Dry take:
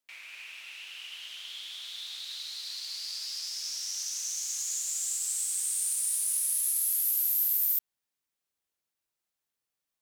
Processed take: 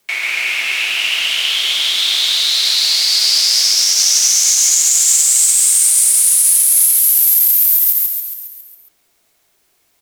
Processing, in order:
frequency shifter −67 Hz
in parallel at 0 dB: downward compressor 12 to 1, threshold −38 dBFS, peak gain reduction 15 dB
on the sum: floating-point word with a short mantissa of 6 bits
hollow resonant body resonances 390/680/2,200 Hz, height 8 dB
on a send: echo with shifted repeats 137 ms, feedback 57%, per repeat −42 Hz, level −4.5 dB
on the sum: boost into a limiter +19.5 dB
level −1 dB

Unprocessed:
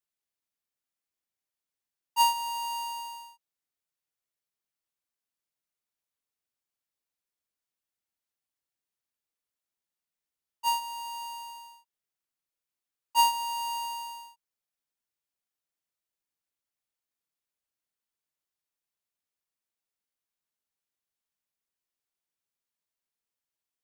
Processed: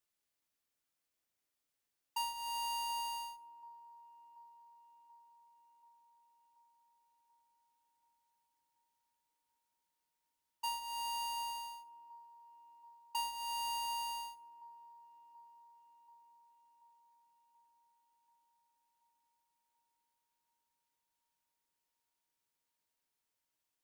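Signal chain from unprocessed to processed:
downward compressor 8 to 1, threshold −40 dBFS, peak gain reduction 19 dB
on a send: delay with a band-pass on its return 733 ms, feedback 63%, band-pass 450 Hz, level −13 dB
on the sum: feedback delay network reverb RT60 0.46 s, low-frequency decay 0.95×, high-frequency decay 0.8×, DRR 10 dB
level +2.5 dB

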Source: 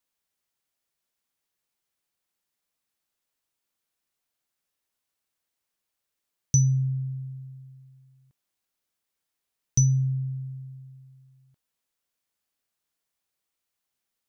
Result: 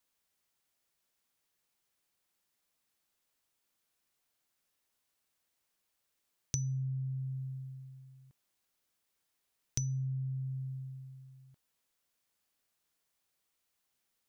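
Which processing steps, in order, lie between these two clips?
downward compressor 4 to 1, threshold −38 dBFS, peak gain reduction 18 dB
level +2 dB

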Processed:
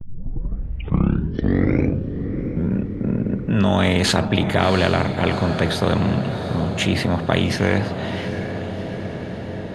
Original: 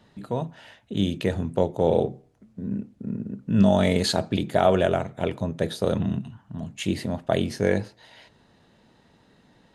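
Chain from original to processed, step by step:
turntable start at the beginning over 2.85 s
noise gate with hold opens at −49 dBFS
bass and treble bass +15 dB, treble −14 dB
in parallel at +3 dB: brickwall limiter −14 dBFS, peak gain reduction 16 dB
on the sum: low-shelf EQ 76 Hz −8.5 dB
on a send: feedback delay with all-pass diffusion 731 ms, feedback 59%, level −15 dB
on the sum: every bin compressed towards the loudest bin 2 to 1
level −4 dB

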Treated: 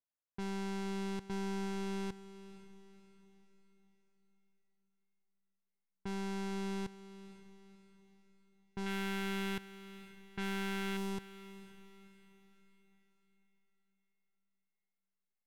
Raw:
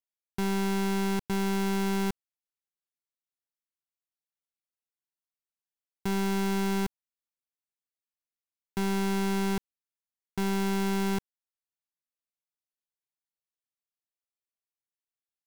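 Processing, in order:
brickwall limiter −37 dBFS, peak gain reduction 9.5 dB
0:08.86–0:10.97: flat-topped bell 2,200 Hz +8.5 dB
low-pass that shuts in the quiet parts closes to 1,600 Hz, open at −34 dBFS
feedback delay with all-pass diffusion 512 ms, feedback 43%, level −15 dB
level −1 dB

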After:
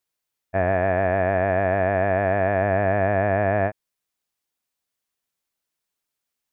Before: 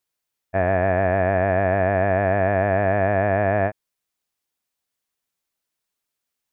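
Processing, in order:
0:00.72–0:02.62: bass and treble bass −2 dB, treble +4 dB
level −1 dB

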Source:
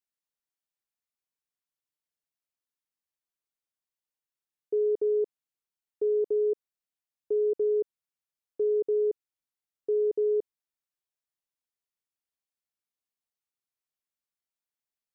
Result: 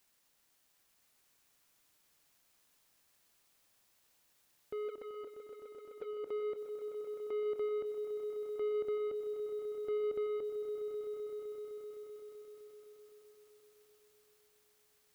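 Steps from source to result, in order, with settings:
brickwall limiter −53 dBFS, peak gain reduction 31 dB
leveller curve on the samples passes 2
0:04.88–0:06.24: flanger swept by the level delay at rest 7.5 ms, full sweep at −42.5 dBFS
echo that builds up and dies away 128 ms, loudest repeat 5, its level −12 dB
level +16.5 dB

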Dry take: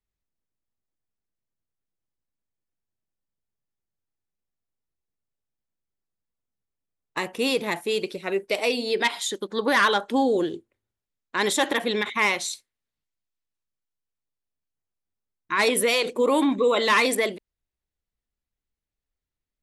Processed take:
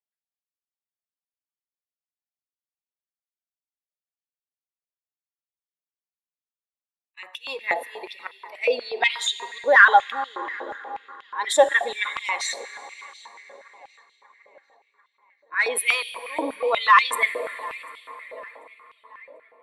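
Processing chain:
expanding power law on the bin magnitudes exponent 1.6
volume swells 176 ms
tape delay 743 ms, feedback 54%, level −18.5 dB, low-pass 3,100 Hz
on a send at −12 dB: convolution reverb RT60 5.4 s, pre-delay 9 ms
on the sum: high-pass on a step sequencer 8.3 Hz 600–3,200 Hz

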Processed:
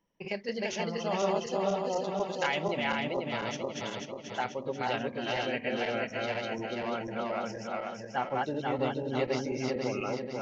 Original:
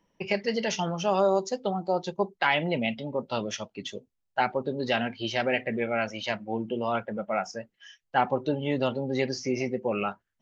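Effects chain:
feedback delay that plays each chunk backwards 244 ms, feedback 71%, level −0.5 dB
0:02.20–0:02.77: high-shelf EQ 5,000 Hz +7.5 dB
level −8 dB

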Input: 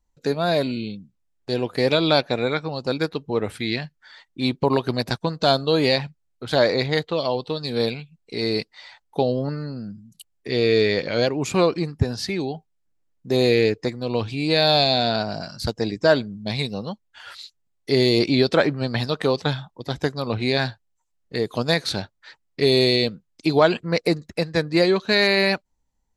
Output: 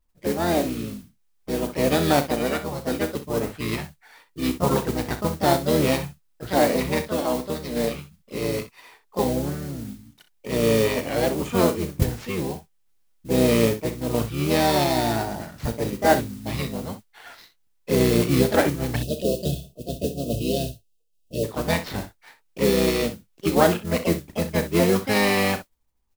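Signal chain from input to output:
running median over 9 samples
pitch-shifted copies added −12 semitones −4 dB, +4 semitones −4 dB
noise that follows the level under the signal 15 dB
gain on a spectral selection 0:18.96–0:21.44, 720–2,500 Hz −28 dB
on a send: ambience of single reflections 35 ms −12 dB, 63 ms −12.5 dB
on the sum: level −4 dB

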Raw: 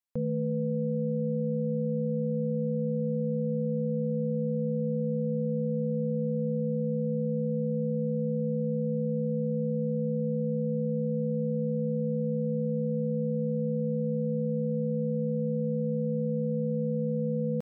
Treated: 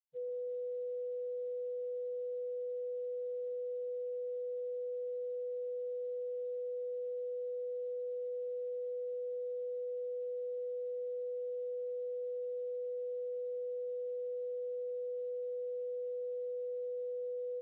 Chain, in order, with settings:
parametric band 120 Hz −7.5 dB 1.3 octaves
spectral peaks only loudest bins 1
level −1.5 dB
Speex 11 kbit/s 8,000 Hz

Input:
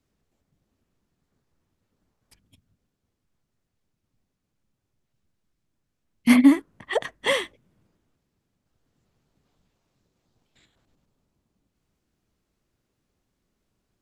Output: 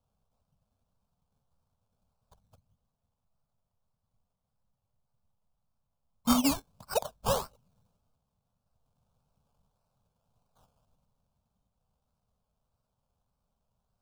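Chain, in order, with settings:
0:06.33–0:07.42: low-pass that shuts in the quiet parts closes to 1,700 Hz, open at −10 dBFS
sample-and-hold swept by an LFO 18×, swing 60% 1.7 Hz
phaser with its sweep stopped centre 800 Hz, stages 4
level −1.5 dB

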